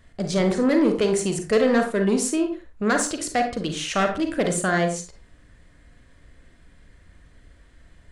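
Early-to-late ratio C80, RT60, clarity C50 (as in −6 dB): 12.0 dB, non-exponential decay, 7.5 dB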